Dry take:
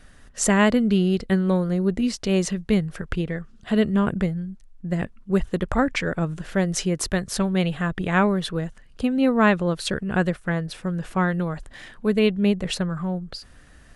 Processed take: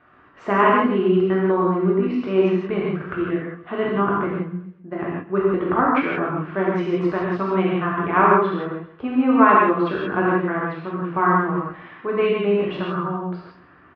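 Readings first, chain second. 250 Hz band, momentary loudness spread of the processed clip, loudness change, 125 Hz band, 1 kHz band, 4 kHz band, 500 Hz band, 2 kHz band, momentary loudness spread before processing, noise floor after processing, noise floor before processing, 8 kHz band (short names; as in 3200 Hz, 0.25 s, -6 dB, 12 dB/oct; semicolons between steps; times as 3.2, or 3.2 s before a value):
+0.5 dB, 12 LU, +3.0 dB, -2.5 dB, +9.5 dB, -7.5 dB, +5.0 dB, +2.5 dB, 11 LU, -50 dBFS, -49 dBFS, under -30 dB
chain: speaker cabinet 200–2200 Hz, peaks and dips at 210 Hz -10 dB, 350 Hz +3 dB, 530 Hz -7 dB, 1100 Hz +8 dB, 1800 Hz -6 dB; feedback echo 0.132 s, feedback 41%, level -17 dB; non-linear reverb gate 0.2 s flat, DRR -5 dB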